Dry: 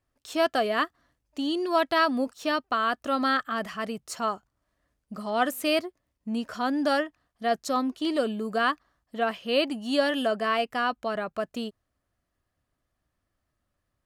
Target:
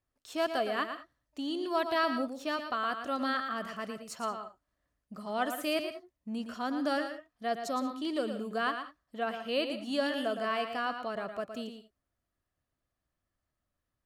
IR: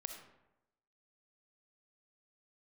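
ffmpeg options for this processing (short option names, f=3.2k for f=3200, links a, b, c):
-filter_complex "[0:a]asplit=2[a][b];[1:a]atrim=start_sample=2205,afade=t=out:st=0.14:d=0.01,atrim=end_sample=6615,adelay=114[c];[b][c]afir=irnorm=-1:irlink=0,volume=-4.5dB[d];[a][d]amix=inputs=2:normalize=0,volume=-7dB"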